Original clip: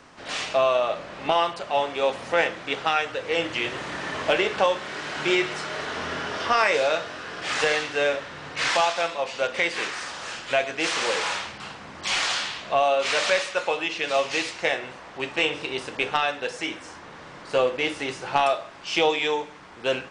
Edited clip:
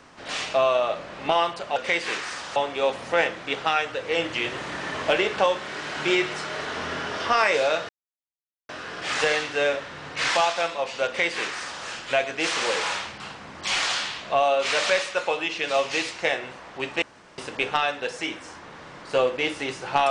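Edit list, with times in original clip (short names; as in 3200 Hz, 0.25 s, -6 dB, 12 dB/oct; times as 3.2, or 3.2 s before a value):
7.09 insert silence 0.80 s
9.46–10.26 copy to 1.76
15.42–15.78 room tone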